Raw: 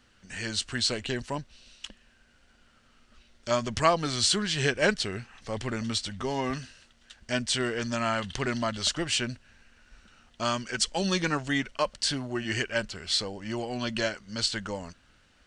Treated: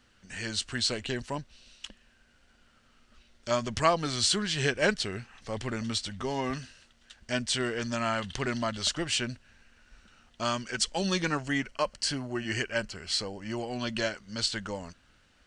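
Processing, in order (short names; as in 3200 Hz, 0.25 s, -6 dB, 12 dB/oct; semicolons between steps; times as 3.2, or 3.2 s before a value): 11.39–13.67 notch 3600 Hz, Q 5.5; gain -1.5 dB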